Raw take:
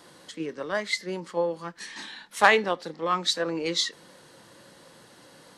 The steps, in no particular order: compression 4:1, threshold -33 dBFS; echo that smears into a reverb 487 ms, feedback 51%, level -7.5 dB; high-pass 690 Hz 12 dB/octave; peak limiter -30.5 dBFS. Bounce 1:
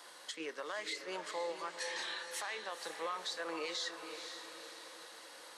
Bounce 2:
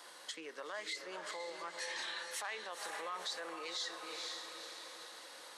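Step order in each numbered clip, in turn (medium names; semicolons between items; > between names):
high-pass > compression > peak limiter > echo that smears into a reverb; compression > echo that smears into a reverb > peak limiter > high-pass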